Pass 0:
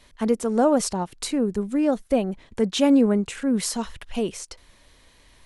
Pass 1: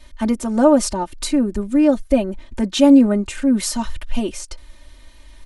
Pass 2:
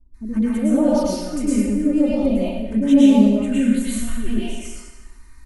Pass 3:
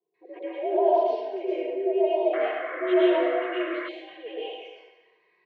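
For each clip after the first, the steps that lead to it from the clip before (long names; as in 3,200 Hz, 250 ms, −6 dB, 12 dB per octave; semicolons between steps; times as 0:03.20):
low-shelf EQ 85 Hz +10.5 dB; comb filter 3.3 ms, depth 95%; level +1 dB
phaser swept by the level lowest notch 530 Hz, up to 1,600 Hz, full sweep at −10.5 dBFS; multiband delay without the direct sound lows, highs 140 ms, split 570 Hz; dense smooth reverb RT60 1.1 s, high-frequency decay 0.9×, pre-delay 95 ms, DRR −8.5 dB; level −8.5 dB
phaser with its sweep stopped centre 520 Hz, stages 4; sound drawn into the spectrogram noise, 0:02.33–0:03.89, 930–2,200 Hz −37 dBFS; single-sideband voice off tune +86 Hz 230–3,100 Hz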